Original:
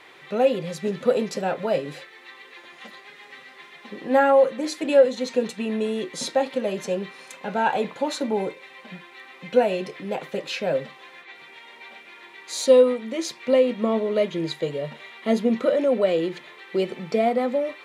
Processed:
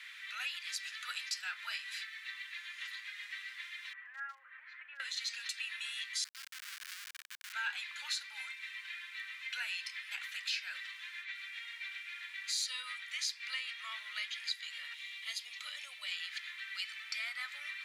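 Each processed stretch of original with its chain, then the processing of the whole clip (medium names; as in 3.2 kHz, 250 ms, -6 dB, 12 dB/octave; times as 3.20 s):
3.93–5.00 s: low-pass 1.8 kHz 24 dB/octave + compression 4:1, threshold -30 dBFS + hard clipper -23.5 dBFS
6.24–7.53 s: compression 8:1, threshold -35 dBFS + word length cut 6-bit, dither none + sliding maximum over 65 samples
14.94–16.12 s: peaking EQ 1.5 kHz -13.5 dB 0.78 oct + upward compressor, threshold -41 dBFS
whole clip: steep high-pass 1.5 kHz 36 dB/octave; dynamic bell 4.8 kHz, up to +7 dB, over -54 dBFS, Q 3.9; compression 2.5:1, threshold -38 dBFS; trim +1 dB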